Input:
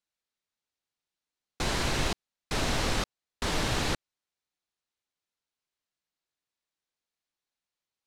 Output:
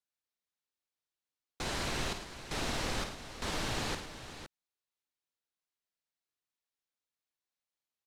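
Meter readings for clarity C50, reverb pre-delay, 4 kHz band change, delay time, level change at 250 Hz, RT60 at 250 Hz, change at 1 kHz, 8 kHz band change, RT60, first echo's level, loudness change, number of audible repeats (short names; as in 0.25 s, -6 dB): none, none, -5.5 dB, 52 ms, -6.5 dB, none, -5.5 dB, -5.5 dB, none, -8.0 dB, -6.0 dB, 3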